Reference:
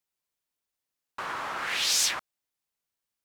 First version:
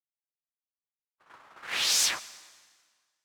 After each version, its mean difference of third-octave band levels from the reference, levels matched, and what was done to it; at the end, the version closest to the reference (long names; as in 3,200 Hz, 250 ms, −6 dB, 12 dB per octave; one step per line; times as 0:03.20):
10.0 dB: noise gate −30 dBFS, range −57 dB
dense smooth reverb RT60 1.7 s, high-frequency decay 0.9×, pre-delay 80 ms, DRR 18 dB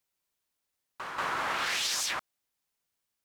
4.5 dB: brickwall limiter −25 dBFS, peak gain reduction 11 dB
backwards echo 186 ms −6.5 dB
level +2.5 dB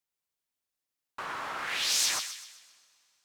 1.5 dB: on a send: delay with a high-pass on its return 128 ms, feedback 43%, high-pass 2,300 Hz, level −5.5 dB
on the sum: coupled-rooms reverb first 0.44 s, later 3.2 s, from −18 dB, DRR 15.5 dB
level −3 dB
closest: third